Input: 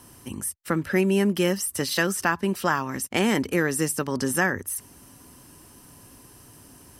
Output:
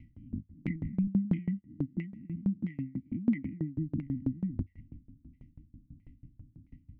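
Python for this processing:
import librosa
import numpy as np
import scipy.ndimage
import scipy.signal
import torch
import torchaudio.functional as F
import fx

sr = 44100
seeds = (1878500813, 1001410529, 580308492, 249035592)

y = fx.spec_swells(x, sr, rise_s=0.31)
y = fx.transient(y, sr, attack_db=1, sustain_db=7)
y = fx.brickwall_bandstop(y, sr, low_hz=320.0, high_hz=1900.0)
y = fx.dynamic_eq(y, sr, hz=770.0, q=3.2, threshold_db=-58.0, ratio=4.0, max_db=8)
y = fx.env_lowpass_down(y, sr, base_hz=1700.0, full_db=-23.0)
y = fx.highpass(y, sr, hz=130.0, slope=12, at=(1.07, 3.78))
y = fx.tilt_eq(y, sr, slope=-4.5)
y = fx.filter_lfo_lowpass(y, sr, shape='saw_down', hz=1.5, low_hz=440.0, high_hz=2200.0, q=7.8)
y = fx.tremolo_decay(y, sr, direction='decaying', hz=6.1, depth_db=26)
y = y * librosa.db_to_amplitude(-8.5)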